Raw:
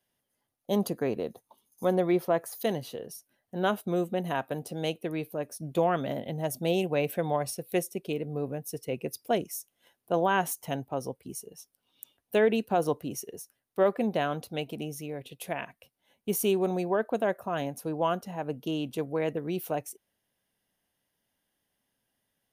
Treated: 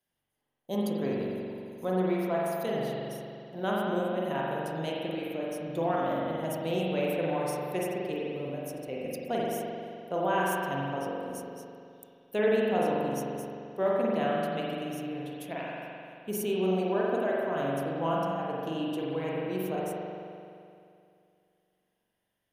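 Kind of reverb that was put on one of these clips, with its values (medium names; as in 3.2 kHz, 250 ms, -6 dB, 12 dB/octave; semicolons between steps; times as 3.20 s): spring tank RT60 2.5 s, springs 43 ms, chirp 50 ms, DRR -5 dB; trim -6.5 dB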